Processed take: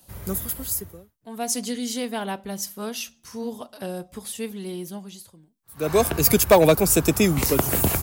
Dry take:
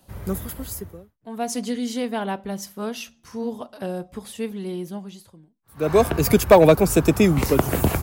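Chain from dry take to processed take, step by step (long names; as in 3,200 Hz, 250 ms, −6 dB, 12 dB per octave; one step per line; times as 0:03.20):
high-shelf EQ 3,800 Hz +11.5 dB
level −3 dB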